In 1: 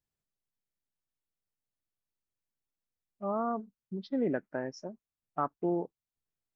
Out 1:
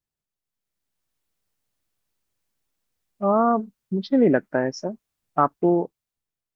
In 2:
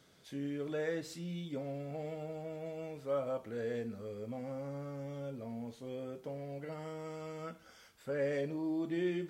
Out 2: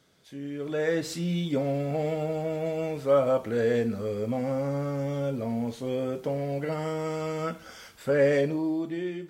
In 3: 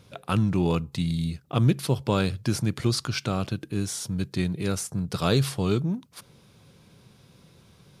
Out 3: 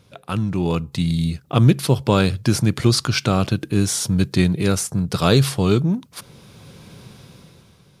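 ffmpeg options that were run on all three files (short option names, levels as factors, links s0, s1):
-af "dynaudnorm=f=150:g=11:m=4.47"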